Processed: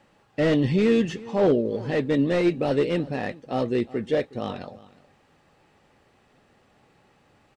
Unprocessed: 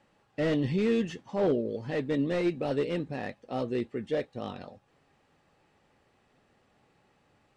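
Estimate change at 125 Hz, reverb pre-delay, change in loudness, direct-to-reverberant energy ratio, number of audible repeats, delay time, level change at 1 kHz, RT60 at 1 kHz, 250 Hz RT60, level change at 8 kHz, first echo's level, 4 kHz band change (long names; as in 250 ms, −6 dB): +6.5 dB, no reverb audible, +6.5 dB, no reverb audible, 1, 365 ms, +6.5 dB, no reverb audible, no reverb audible, can't be measured, −20.0 dB, +6.5 dB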